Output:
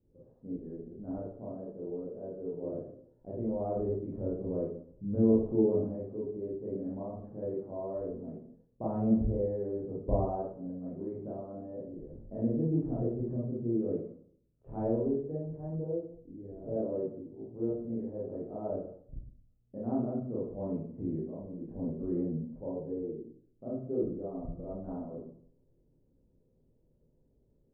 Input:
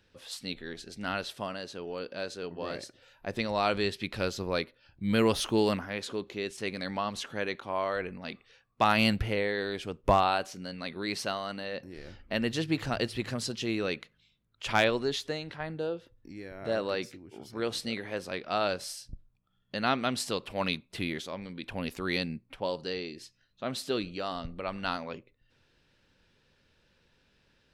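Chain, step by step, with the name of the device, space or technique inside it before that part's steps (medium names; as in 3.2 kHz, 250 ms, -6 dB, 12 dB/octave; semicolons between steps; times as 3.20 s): next room (low-pass 530 Hz 24 dB/octave; reverberation RT60 0.60 s, pre-delay 22 ms, DRR -8 dB); trim -7 dB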